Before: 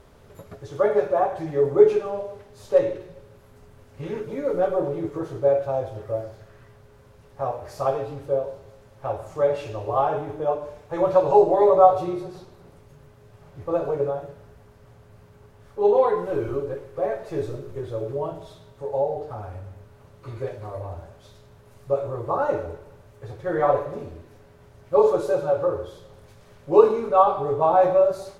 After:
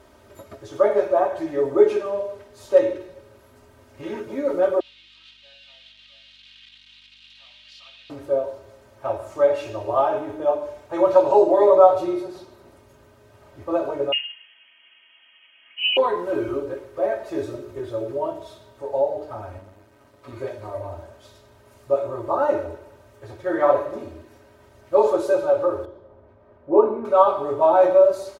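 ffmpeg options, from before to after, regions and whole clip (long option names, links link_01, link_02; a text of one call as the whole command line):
ffmpeg -i in.wav -filter_complex "[0:a]asettb=1/sr,asplit=3[link_01][link_02][link_03];[link_01]atrim=end=4.804[link_04];[link_02]atrim=start=4.8:end=8.1,asetpts=PTS-STARTPTS,afade=type=in:duration=0.004:curve=qsin,afade=type=out:start_time=3.296:duration=0.004:curve=qsin,aeval=exprs='val(0)+0.5*0.0237*sgn(val(0))':channel_layout=same,asuperpass=centerf=3300:order=4:qfactor=2.3,aeval=exprs='val(0)+0.000708*(sin(2*PI*50*n/s)+sin(2*PI*2*50*n/s)/2+sin(2*PI*3*50*n/s)/3+sin(2*PI*4*50*n/s)/4+sin(2*PI*5*50*n/s)/5)':channel_layout=same[link_05];[link_03]atrim=start=8.096[link_06];[link_04][link_05]acrossfade=duration=0.004:curve1=hsin:curve2=qsin[link_07];[link_07][link_06]acrossfade=duration=0.004:curve1=qsin:curve2=hsin,asettb=1/sr,asplit=3[link_08][link_09][link_10];[link_08]atrim=end=14.124[link_11];[link_09]atrim=start=14.12:end=15.97,asetpts=PTS-STARTPTS,afade=type=in:duration=0.004:curve=qsin,afade=type=out:start_time=1.846:duration=0.004:curve=qsin,highpass=frequency=350:poles=1,aecho=1:1:7:0.47,atrim=end_sample=81585,lowpass=frequency=2900:width_type=q:width=0.5098,lowpass=frequency=2900:width_type=q:width=0.6013,lowpass=frequency=2900:width_type=q:width=0.9,lowpass=frequency=2900:width_type=q:width=2.563,afreqshift=-3400[link_12];[link_10]atrim=start=15.966[link_13];[link_11][link_12]acrossfade=duration=0.004:curve1=hsin:curve2=qsin[link_14];[link_14][link_13]acrossfade=duration=0.004:curve1=qsin:curve2=hsin,asettb=1/sr,asplit=3[link_15][link_16][link_17];[link_15]atrim=end=19.584[link_18];[link_16]atrim=start=19.58:end=20.33,asetpts=PTS-STARTPTS,afade=type=in:duration=0.004:curve=qsin,afade=type=out:start_time=0.746:duration=0.004:curve=qsin,highpass=frequency=43:poles=1,aecho=1:1:7.1:0.4,atrim=end_sample=33075,aeval=exprs='max(val(0),0)':channel_layout=same[link_19];[link_17]atrim=start=20.326[link_20];[link_18][link_19]acrossfade=duration=0.004:curve1=hsin:curve2=qsin[link_21];[link_21][link_20]acrossfade=duration=0.004:curve1=qsin:curve2=hsin,asettb=1/sr,asplit=3[link_22][link_23][link_24];[link_22]atrim=end=25.854[link_25];[link_23]atrim=start=25.85:end=27.05,asetpts=PTS-STARTPTS,afade=type=in:duration=0.004:curve=qsin,afade=type=out:start_time=1.196:duration=0.004:curve=qsin,lowpass=1000,bandreject=frequency=60:width_type=h:width=6,bandreject=frequency=120:width_type=h:width=6,bandreject=frequency=180:width_type=h:width=6[link_26];[link_24]atrim=start=27.046[link_27];[link_25][link_26]acrossfade=duration=0.004:curve1=hsin:curve2=qsin[link_28];[link_28][link_27]acrossfade=duration=0.004:curve1=qsin:curve2=hsin,highpass=59,lowshelf=frequency=190:gain=-4.5,aecho=1:1:3.2:0.72,volume=1dB" out.wav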